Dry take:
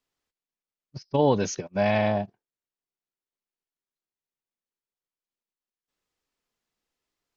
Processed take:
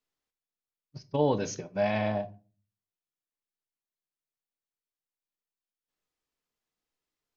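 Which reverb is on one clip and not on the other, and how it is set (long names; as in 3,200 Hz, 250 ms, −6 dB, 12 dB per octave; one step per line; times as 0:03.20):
rectangular room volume 210 cubic metres, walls furnished, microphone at 0.49 metres
level −5.5 dB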